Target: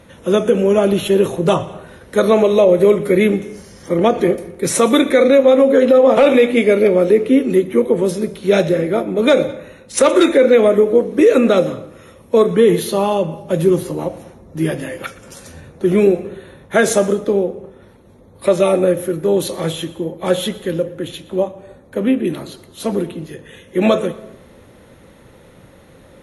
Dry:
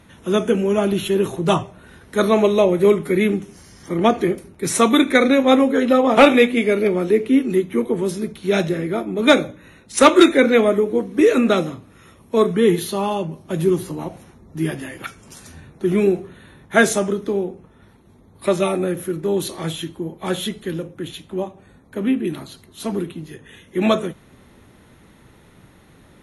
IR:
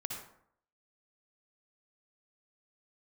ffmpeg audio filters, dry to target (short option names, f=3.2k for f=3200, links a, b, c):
-filter_complex "[0:a]equalizer=f=530:w=4.1:g=12,alimiter=limit=-6dB:level=0:latency=1:release=82,asplit=2[a][b];[1:a]atrim=start_sample=2205,adelay=119[c];[b][c]afir=irnorm=-1:irlink=0,volume=-17.5dB[d];[a][d]amix=inputs=2:normalize=0,volume=3dB"